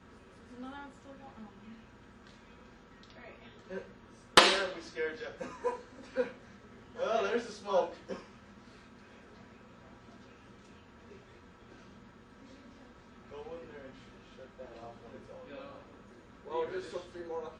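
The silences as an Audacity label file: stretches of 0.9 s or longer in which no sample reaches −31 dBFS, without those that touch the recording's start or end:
8.130000	16.530000	silence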